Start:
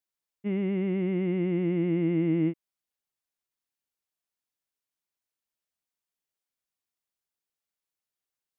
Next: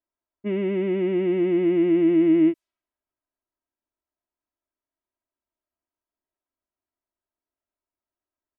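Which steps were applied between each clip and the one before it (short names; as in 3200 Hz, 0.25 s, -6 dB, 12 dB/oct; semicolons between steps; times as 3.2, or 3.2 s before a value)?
low-pass opened by the level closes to 1100 Hz, open at -25.5 dBFS; comb 3.1 ms, depth 75%; gain +4.5 dB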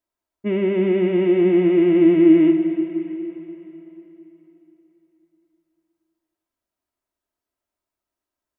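plate-style reverb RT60 3.7 s, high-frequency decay 0.9×, DRR 6 dB; gain +4.5 dB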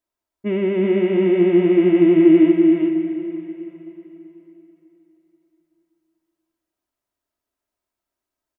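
echo 0.381 s -4.5 dB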